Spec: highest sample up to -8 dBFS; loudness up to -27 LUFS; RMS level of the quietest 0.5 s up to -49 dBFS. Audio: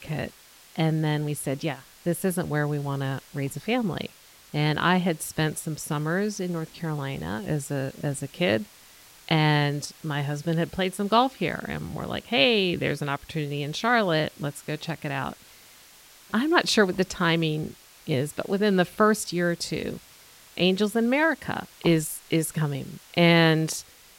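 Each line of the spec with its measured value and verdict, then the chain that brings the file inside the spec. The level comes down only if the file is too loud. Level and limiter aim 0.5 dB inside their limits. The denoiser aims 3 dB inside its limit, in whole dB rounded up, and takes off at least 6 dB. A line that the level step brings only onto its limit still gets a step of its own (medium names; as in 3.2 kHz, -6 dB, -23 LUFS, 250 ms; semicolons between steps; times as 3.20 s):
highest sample -5.5 dBFS: fail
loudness -26.0 LUFS: fail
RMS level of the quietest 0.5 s -52 dBFS: pass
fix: trim -1.5 dB; peak limiter -8.5 dBFS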